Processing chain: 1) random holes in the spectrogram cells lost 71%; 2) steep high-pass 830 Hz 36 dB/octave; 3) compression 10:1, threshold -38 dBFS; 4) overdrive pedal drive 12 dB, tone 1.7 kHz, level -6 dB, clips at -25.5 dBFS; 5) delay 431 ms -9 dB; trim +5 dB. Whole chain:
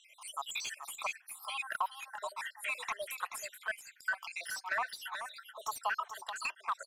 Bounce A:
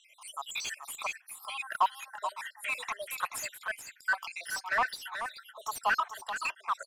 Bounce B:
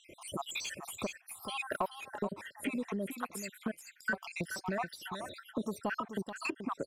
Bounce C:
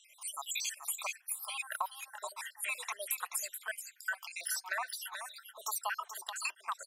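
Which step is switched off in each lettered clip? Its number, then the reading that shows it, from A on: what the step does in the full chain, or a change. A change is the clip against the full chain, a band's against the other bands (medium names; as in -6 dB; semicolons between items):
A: 3, mean gain reduction 3.5 dB; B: 2, 500 Hz band +10.0 dB; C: 4, 8 kHz band +9.5 dB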